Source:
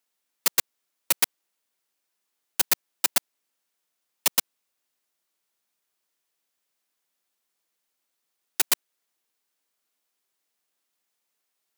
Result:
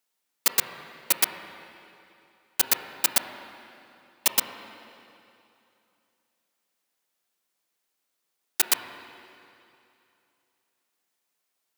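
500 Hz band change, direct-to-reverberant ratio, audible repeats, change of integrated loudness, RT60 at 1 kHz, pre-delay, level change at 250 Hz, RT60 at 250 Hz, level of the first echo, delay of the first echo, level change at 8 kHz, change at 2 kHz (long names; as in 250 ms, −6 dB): +1.0 dB, 6.0 dB, no echo audible, 0.0 dB, 2.8 s, 20 ms, +1.5 dB, 2.8 s, no echo audible, no echo audible, 0.0 dB, +0.5 dB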